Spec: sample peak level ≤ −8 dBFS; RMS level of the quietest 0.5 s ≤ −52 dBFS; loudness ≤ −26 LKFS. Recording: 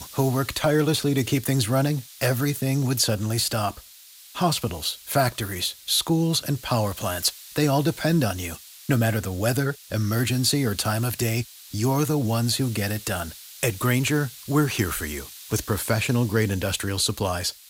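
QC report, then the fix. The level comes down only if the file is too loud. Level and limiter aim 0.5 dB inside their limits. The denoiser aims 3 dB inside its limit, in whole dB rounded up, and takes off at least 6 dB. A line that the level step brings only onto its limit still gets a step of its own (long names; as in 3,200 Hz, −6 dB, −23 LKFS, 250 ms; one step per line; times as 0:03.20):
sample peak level −8.5 dBFS: in spec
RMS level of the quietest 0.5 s −48 dBFS: out of spec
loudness −24.0 LKFS: out of spec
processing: broadband denoise 6 dB, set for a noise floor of −48 dBFS
level −2.5 dB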